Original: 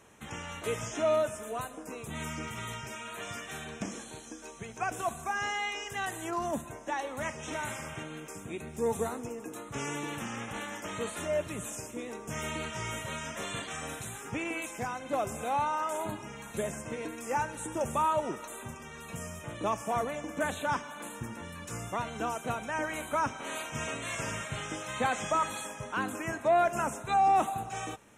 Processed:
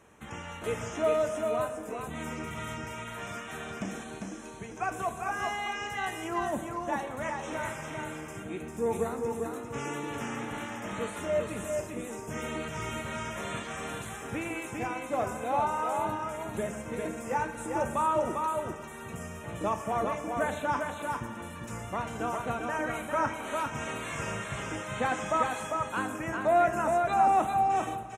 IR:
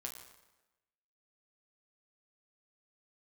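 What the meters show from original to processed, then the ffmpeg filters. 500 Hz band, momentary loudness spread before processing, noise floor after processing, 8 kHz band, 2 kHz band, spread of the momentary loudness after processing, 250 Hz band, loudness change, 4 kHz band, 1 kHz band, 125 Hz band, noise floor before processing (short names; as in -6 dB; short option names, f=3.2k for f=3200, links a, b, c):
+2.5 dB, 12 LU, -43 dBFS, -3.0 dB, +0.5 dB, 11 LU, +2.5 dB, +2.0 dB, -2.0 dB, +2.0 dB, +1.5 dB, -46 dBFS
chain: -filter_complex "[0:a]aecho=1:1:399:0.631,asplit=2[a][b];[1:a]atrim=start_sample=2205,lowpass=2.8k[c];[b][c]afir=irnorm=-1:irlink=0,volume=1dB[d];[a][d]amix=inputs=2:normalize=0,volume=-4dB"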